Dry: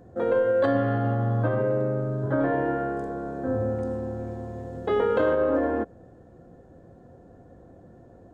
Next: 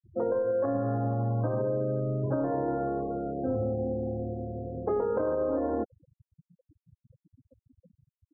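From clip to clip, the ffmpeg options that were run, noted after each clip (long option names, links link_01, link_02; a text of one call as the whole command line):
ffmpeg -i in.wav -af "afftfilt=real='re*gte(hypot(re,im),0.0282)':imag='im*gte(hypot(re,im),0.0282)':win_size=1024:overlap=0.75,lowpass=frequency=1200:width=0.5412,lowpass=frequency=1200:width=1.3066,acompressor=threshold=-25dB:ratio=6" out.wav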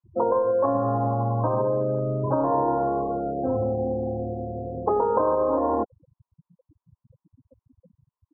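ffmpeg -i in.wav -af "lowpass=frequency=1000:width_type=q:width=7.9,volume=2.5dB" out.wav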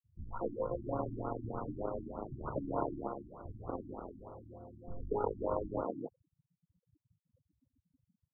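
ffmpeg -i in.wav -filter_complex "[0:a]aeval=exprs='0.376*(cos(1*acos(clip(val(0)/0.376,-1,1)))-cos(1*PI/2))+0.075*(cos(7*acos(clip(val(0)/0.376,-1,1)))-cos(7*PI/2))':channel_layout=same,acrossover=split=160|1100[link_01][link_02][link_03];[link_03]adelay=140[link_04];[link_02]adelay=240[link_05];[link_01][link_05][link_04]amix=inputs=3:normalize=0,afftfilt=real='re*lt(b*sr/1024,330*pow(1500/330,0.5+0.5*sin(2*PI*3.3*pts/sr)))':imag='im*lt(b*sr/1024,330*pow(1500/330,0.5+0.5*sin(2*PI*3.3*pts/sr)))':win_size=1024:overlap=0.75,volume=-6.5dB" out.wav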